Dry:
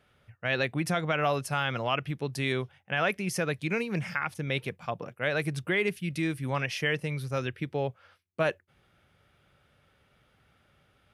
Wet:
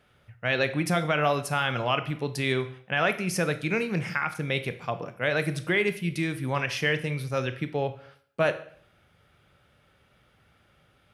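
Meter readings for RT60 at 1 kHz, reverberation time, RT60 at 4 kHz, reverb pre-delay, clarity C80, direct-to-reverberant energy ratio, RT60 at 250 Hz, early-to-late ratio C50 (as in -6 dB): 0.60 s, 0.60 s, 0.50 s, 17 ms, 17.5 dB, 10.0 dB, 0.60 s, 13.5 dB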